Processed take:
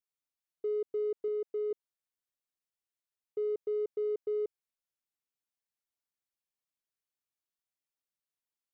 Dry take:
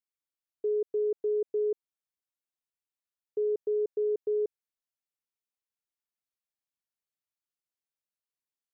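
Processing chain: 1.28–1.71 low shelf 170 Hz -9.5 dB; in parallel at -10.5 dB: soft clip -39 dBFS, distortion -9 dB; on the sum: gain -4.5 dB

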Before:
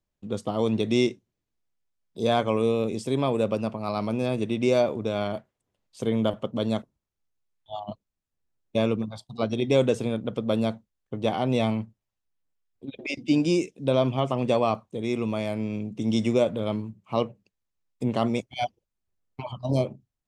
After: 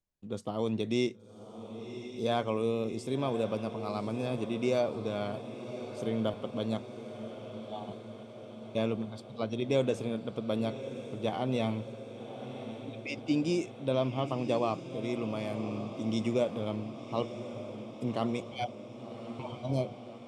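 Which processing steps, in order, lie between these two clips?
diffused feedback echo 1.113 s, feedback 66%, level -11 dB; gain -7 dB

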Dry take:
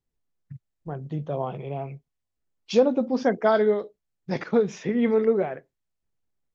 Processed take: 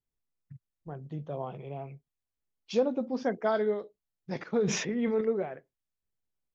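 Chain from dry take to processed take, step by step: 4.54–5.21 sustainer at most 45 dB/s; gain -7.5 dB

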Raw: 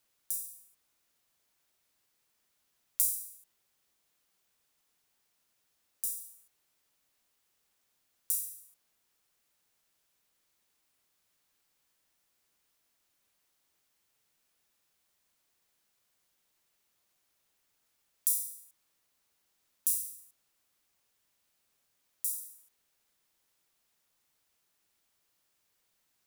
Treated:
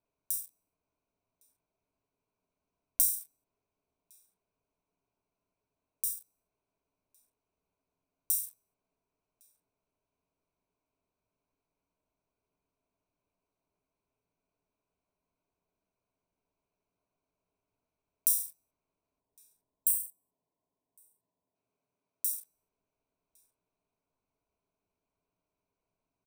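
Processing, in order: Wiener smoothing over 25 samples; 19.96–22.48 HPF 110 Hz 12 dB/oct; 19.2–21.55 spectral gain 1100–7500 Hz -12 dB; ripple EQ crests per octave 1.6, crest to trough 8 dB; outdoor echo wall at 190 m, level -13 dB; gain +1 dB

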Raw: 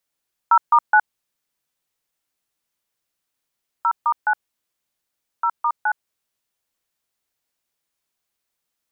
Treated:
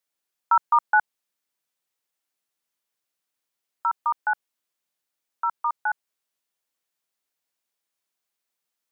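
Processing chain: HPF 230 Hz 6 dB/oct; gain -3.5 dB

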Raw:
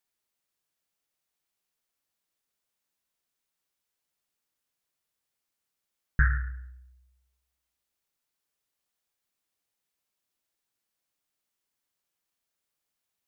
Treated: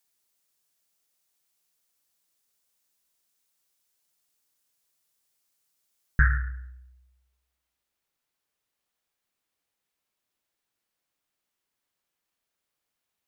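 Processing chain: tone controls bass -1 dB, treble +7 dB, from 6.35 s treble -4 dB; gain +3 dB

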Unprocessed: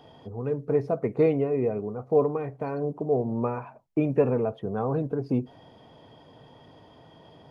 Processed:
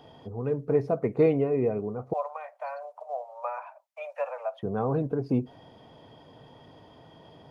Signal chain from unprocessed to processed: 2.13–4.63 steep high-pass 550 Hz 96 dB/oct

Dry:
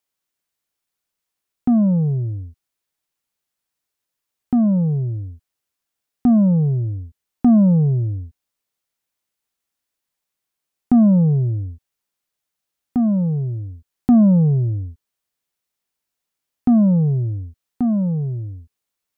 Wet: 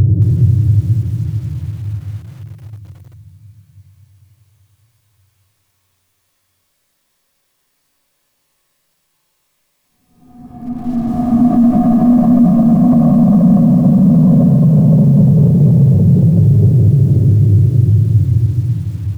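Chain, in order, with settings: on a send: feedback echo 86 ms, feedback 29%, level -9 dB; on the sum: shoebox room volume 910 m³, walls furnished, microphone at 5.5 m; Paulstretch 5.1×, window 1.00 s, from 8.45; in parallel at +2.5 dB: vocal rider within 4 dB; on the sum: limiter -5.5 dBFS, peak gain reduction 20 dB; lo-fi delay 0.222 s, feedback 35%, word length 6-bit, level -12 dB; gain +1.5 dB

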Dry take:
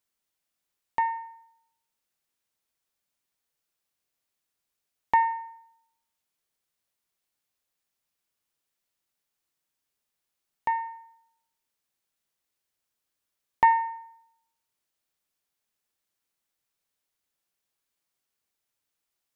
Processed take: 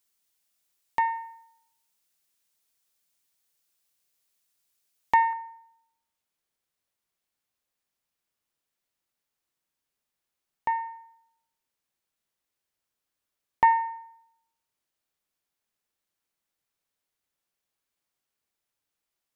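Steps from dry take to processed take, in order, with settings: high shelf 3000 Hz +9 dB, from 5.33 s -3 dB

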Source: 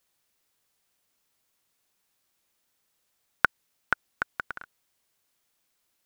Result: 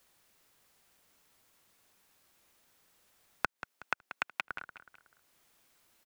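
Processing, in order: rattling part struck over -43 dBFS, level -7 dBFS; compressor 4:1, threshold -24 dBFS, peak gain reduction 9 dB; 3.45–4.44 HPF 250 Hz 12 dB/oct; feedback echo 0.185 s, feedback 31%, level -14 dB; three-band squash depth 40%; gain -3 dB

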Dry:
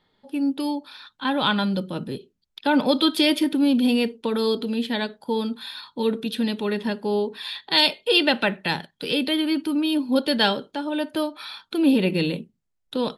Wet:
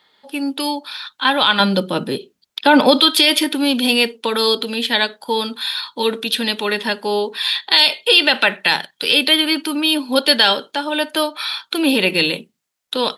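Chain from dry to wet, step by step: HPF 1300 Hz 6 dB/oct, from 1.6 s 490 Hz, from 3 s 1300 Hz; maximiser +15 dB; gain -1 dB

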